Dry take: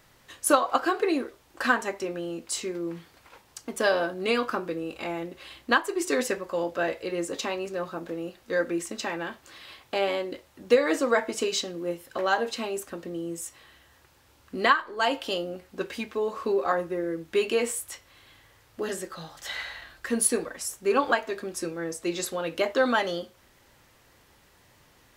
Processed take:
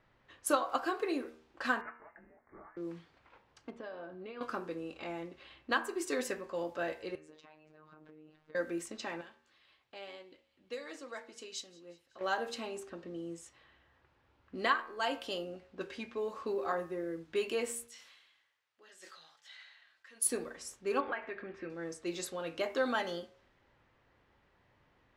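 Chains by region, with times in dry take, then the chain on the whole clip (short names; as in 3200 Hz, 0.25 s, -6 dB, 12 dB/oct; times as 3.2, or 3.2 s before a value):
1.81–2.77 steep high-pass 1300 Hz + inverted band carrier 3300 Hz
3.7–4.41 compressor 3:1, threshold -34 dBFS + tape spacing loss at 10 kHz 23 dB
7.15–8.55 compressor 10:1, threshold -41 dBFS + robotiser 154 Hz
9.21–12.21 pre-emphasis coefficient 0.8 + thin delay 0.187 s, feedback 74%, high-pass 4000 Hz, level -16 dB
17.87–20.26 differentiator + sustainer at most 40 dB/s
21–21.7 synth low-pass 2100 Hz, resonance Q 2.7 + compressor 2:1, threshold -30 dBFS
whole clip: de-hum 78.28 Hz, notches 36; low-pass opened by the level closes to 2300 Hz, open at -25 dBFS; gain -8.5 dB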